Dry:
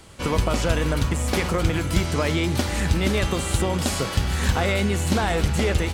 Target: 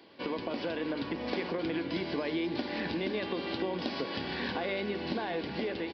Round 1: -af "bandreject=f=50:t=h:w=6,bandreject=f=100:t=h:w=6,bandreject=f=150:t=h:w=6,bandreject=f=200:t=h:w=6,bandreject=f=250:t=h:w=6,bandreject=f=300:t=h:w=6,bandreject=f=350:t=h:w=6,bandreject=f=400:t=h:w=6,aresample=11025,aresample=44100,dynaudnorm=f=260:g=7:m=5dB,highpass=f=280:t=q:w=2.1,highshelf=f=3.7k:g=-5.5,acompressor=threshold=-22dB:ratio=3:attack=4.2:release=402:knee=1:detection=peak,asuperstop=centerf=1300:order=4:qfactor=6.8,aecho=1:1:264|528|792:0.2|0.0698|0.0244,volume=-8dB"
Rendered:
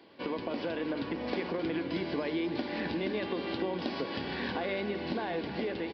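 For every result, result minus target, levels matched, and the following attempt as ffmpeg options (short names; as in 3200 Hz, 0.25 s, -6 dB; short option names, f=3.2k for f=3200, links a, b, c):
echo-to-direct +9.5 dB; 8000 Hz band -3.5 dB
-af "bandreject=f=50:t=h:w=6,bandreject=f=100:t=h:w=6,bandreject=f=150:t=h:w=6,bandreject=f=200:t=h:w=6,bandreject=f=250:t=h:w=6,bandreject=f=300:t=h:w=6,bandreject=f=350:t=h:w=6,bandreject=f=400:t=h:w=6,aresample=11025,aresample=44100,dynaudnorm=f=260:g=7:m=5dB,highpass=f=280:t=q:w=2.1,highshelf=f=3.7k:g=-5.5,acompressor=threshold=-22dB:ratio=3:attack=4.2:release=402:knee=1:detection=peak,asuperstop=centerf=1300:order=4:qfactor=6.8,aecho=1:1:264|528:0.0668|0.0234,volume=-8dB"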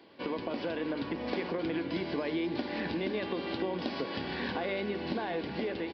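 8000 Hz band -3.5 dB
-af "bandreject=f=50:t=h:w=6,bandreject=f=100:t=h:w=6,bandreject=f=150:t=h:w=6,bandreject=f=200:t=h:w=6,bandreject=f=250:t=h:w=6,bandreject=f=300:t=h:w=6,bandreject=f=350:t=h:w=6,bandreject=f=400:t=h:w=6,aresample=11025,aresample=44100,dynaudnorm=f=260:g=7:m=5dB,highpass=f=280:t=q:w=2.1,acompressor=threshold=-22dB:ratio=3:attack=4.2:release=402:knee=1:detection=peak,asuperstop=centerf=1300:order=4:qfactor=6.8,aecho=1:1:264|528:0.0668|0.0234,volume=-8dB"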